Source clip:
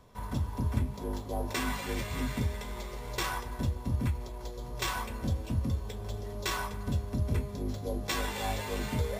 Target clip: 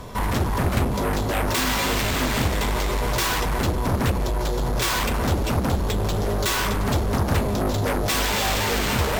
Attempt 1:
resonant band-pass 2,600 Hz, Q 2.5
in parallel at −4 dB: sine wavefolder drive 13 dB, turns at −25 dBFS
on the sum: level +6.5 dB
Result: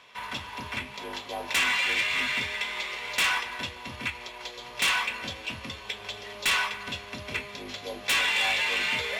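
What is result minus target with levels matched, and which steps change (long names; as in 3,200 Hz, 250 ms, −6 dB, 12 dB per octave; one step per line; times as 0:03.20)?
2,000 Hz band +6.0 dB
remove: resonant band-pass 2,600 Hz, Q 2.5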